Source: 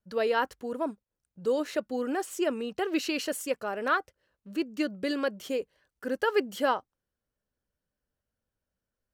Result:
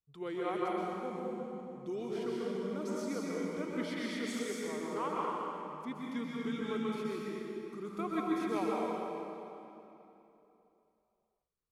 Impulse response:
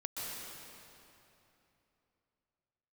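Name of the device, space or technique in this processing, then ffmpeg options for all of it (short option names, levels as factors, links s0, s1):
slowed and reverbed: -filter_complex "[0:a]asetrate=34398,aresample=44100[s0];[1:a]atrim=start_sample=2205[s1];[s0][s1]afir=irnorm=-1:irlink=0,volume=0.376"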